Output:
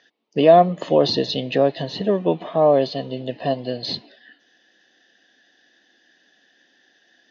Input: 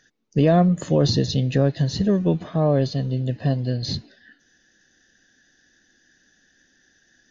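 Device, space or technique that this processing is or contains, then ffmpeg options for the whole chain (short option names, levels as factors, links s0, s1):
phone earpiece: -filter_complex "[0:a]highpass=350,equalizer=f=680:t=q:w=4:g=5,equalizer=f=970:t=q:w=4:g=4,equalizer=f=1500:t=q:w=4:g=-8,equalizer=f=3000:t=q:w=4:g=4,lowpass=f=4400:w=0.5412,lowpass=f=4400:w=1.3066,asettb=1/sr,asplit=3[s0][s1][s2];[s0]atrim=end=1.834[s3];[s1]atrim=start=1.83:end=2.74,asetpts=PTS-STARTPTS,afade=t=in:d=0.004:c=qsin,afade=t=out:st=0.906:d=0.004:c=qsin,equalizer=f=5100:t=o:w=0.72:g=-5.5[s4];[s2]atrim=start=2.736[s5];[s3][s4]acrossfade=d=0.004:c1=hsin:c2=qsin[s6];[s6][s5]acrossfade=d=0.004:c1=qsin:c2=hsin,volume=1.78"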